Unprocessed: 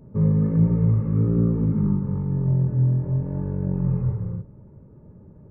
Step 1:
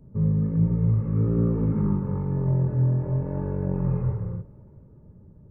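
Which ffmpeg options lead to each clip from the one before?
ffmpeg -i in.wav -filter_complex "[0:a]lowshelf=frequency=160:gain=9,acrossover=split=360[link_01][link_02];[link_02]dynaudnorm=framelen=200:gausssize=13:maxgain=12.5dB[link_03];[link_01][link_03]amix=inputs=2:normalize=0,volume=-8dB" out.wav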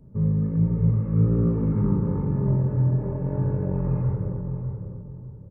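ffmpeg -i in.wav -filter_complex "[0:a]asplit=2[link_01][link_02];[link_02]adelay=602,lowpass=frequency=930:poles=1,volume=-5.5dB,asplit=2[link_03][link_04];[link_04]adelay=602,lowpass=frequency=930:poles=1,volume=0.32,asplit=2[link_05][link_06];[link_06]adelay=602,lowpass=frequency=930:poles=1,volume=0.32,asplit=2[link_07][link_08];[link_08]adelay=602,lowpass=frequency=930:poles=1,volume=0.32[link_09];[link_01][link_03][link_05][link_07][link_09]amix=inputs=5:normalize=0" out.wav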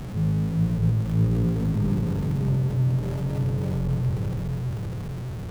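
ffmpeg -i in.wav -af "aeval=exprs='val(0)+0.5*0.0562*sgn(val(0))':channel_layout=same,lowshelf=frequency=280:gain=6,volume=-8dB" out.wav

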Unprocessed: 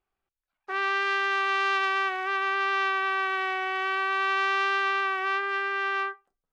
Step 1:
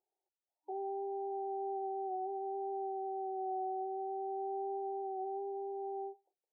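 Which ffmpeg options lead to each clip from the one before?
ffmpeg -i in.wav -af "afftfilt=real='re*between(b*sr/4096,310,950)':imag='im*between(b*sr/4096,310,950)':win_size=4096:overlap=0.75,volume=-3dB" out.wav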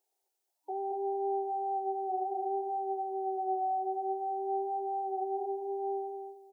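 ffmpeg -i in.wav -filter_complex "[0:a]bass=frequency=250:gain=-15,treble=frequency=4000:gain=8,asplit=2[link_01][link_02];[link_02]adelay=221,lowpass=frequency=810:poles=1,volume=-4dB,asplit=2[link_03][link_04];[link_04]adelay=221,lowpass=frequency=810:poles=1,volume=0.28,asplit=2[link_05][link_06];[link_06]adelay=221,lowpass=frequency=810:poles=1,volume=0.28,asplit=2[link_07][link_08];[link_08]adelay=221,lowpass=frequency=810:poles=1,volume=0.28[link_09];[link_01][link_03][link_05][link_07][link_09]amix=inputs=5:normalize=0,volume=5.5dB" out.wav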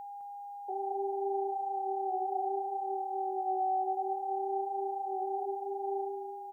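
ffmpeg -i in.wav -af "bass=frequency=250:gain=-10,treble=frequency=4000:gain=3,aeval=exprs='val(0)+0.00891*sin(2*PI*810*n/s)':channel_layout=same,aecho=1:1:209:0.335" out.wav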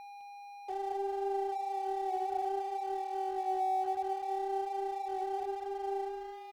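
ffmpeg -i in.wav -af "aeval=exprs='sgn(val(0))*max(abs(val(0))-0.00299,0)':channel_layout=same" out.wav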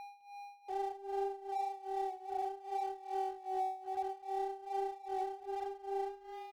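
ffmpeg -i in.wav -af "alimiter=level_in=4.5dB:limit=-24dB:level=0:latency=1:release=163,volume=-4.5dB,tremolo=f=2.5:d=0.86,volume=1dB" out.wav

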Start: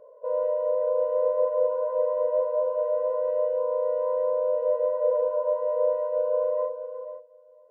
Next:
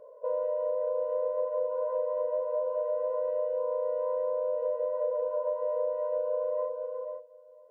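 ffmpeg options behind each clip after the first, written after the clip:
ffmpeg -i in.wav -af "acompressor=threshold=-27dB:ratio=6" out.wav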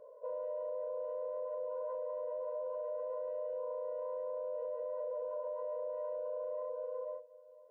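ffmpeg -i in.wav -af "alimiter=level_in=5dB:limit=-24dB:level=0:latency=1:release=35,volume=-5dB,volume=-4dB" out.wav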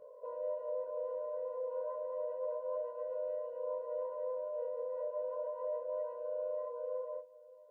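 ffmpeg -i in.wav -af "flanger=delay=20:depth=7.2:speed=0.31,volume=3.5dB" out.wav

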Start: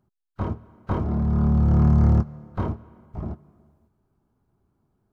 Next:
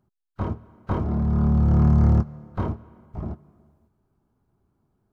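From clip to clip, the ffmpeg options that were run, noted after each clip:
ffmpeg -i in.wav -af anull out.wav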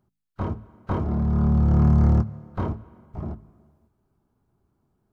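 ffmpeg -i in.wav -af "bandreject=frequency=53.2:width_type=h:width=4,bandreject=frequency=106.4:width_type=h:width=4,bandreject=frequency=159.6:width_type=h:width=4,bandreject=frequency=212.8:width_type=h:width=4,bandreject=frequency=266:width_type=h:width=4" out.wav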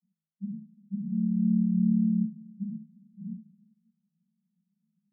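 ffmpeg -i in.wav -af "asuperpass=centerf=190:order=20:qfactor=2.6,volume=1dB" out.wav

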